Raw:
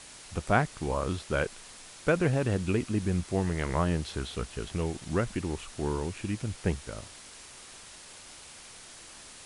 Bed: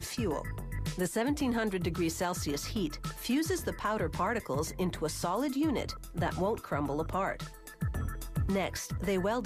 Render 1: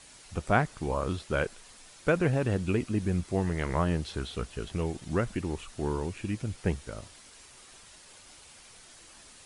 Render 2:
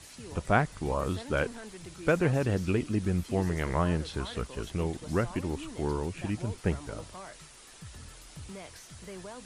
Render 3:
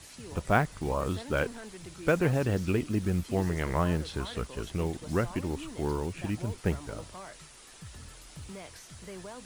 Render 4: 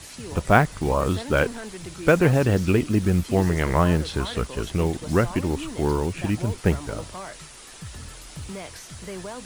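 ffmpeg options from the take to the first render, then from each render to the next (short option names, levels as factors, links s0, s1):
-af "afftdn=nr=6:nf=-49"
-filter_complex "[1:a]volume=0.211[s0];[0:a][s0]amix=inputs=2:normalize=0"
-af "acrusher=bits=7:mode=log:mix=0:aa=0.000001"
-af "volume=2.51"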